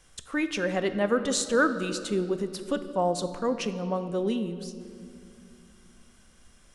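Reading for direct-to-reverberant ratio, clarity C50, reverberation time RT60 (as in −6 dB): 9.5 dB, 11.0 dB, 2.4 s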